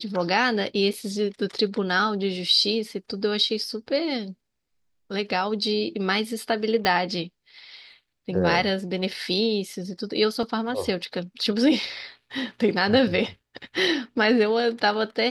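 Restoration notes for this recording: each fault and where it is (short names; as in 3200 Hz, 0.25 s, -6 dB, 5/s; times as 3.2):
0.93 gap 4.8 ms
6.85 pop -9 dBFS
10.43 gap 2.8 ms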